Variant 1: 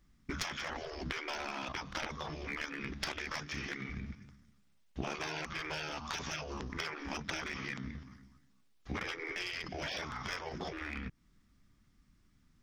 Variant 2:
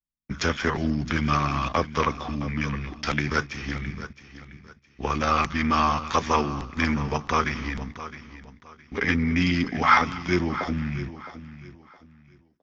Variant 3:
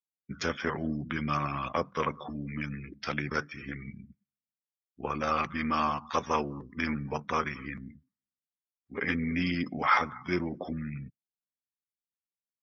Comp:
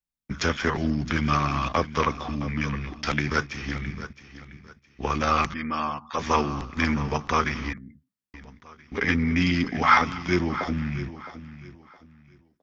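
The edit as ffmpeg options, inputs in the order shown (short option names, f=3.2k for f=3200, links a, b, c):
-filter_complex "[2:a]asplit=2[a][b];[1:a]asplit=3[c][d][e];[c]atrim=end=5.542[f];[a]atrim=start=5.538:end=6.192[g];[d]atrim=start=6.188:end=7.732[h];[b]atrim=start=7.728:end=8.342[i];[e]atrim=start=8.338[j];[f][g]acrossfade=d=0.004:c1=hsin:c2=hsin[k];[k][h]acrossfade=d=0.004:c1=hsin:c2=hsin[l];[l][i]acrossfade=d=0.004:c1=hsin:c2=hsin[m];[m][j]acrossfade=d=0.004:c1=hsin:c2=hsin"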